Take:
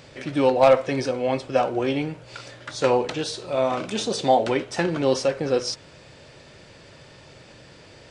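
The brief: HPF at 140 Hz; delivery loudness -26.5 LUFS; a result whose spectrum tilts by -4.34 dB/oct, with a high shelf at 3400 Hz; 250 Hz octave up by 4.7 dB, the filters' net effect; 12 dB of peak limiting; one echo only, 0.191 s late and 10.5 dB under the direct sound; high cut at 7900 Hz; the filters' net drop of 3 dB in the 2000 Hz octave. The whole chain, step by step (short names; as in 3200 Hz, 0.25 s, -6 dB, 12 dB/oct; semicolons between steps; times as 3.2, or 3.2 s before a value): HPF 140 Hz; LPF 7900 Hz; bell 250 Hz +6 dB; bell 2000 Hz -6 dB; high shelf 3400 Hz +6 dB; limiter -16.5 dBFS; echo 0.191 s -10.5 dB; gain -0.5 dB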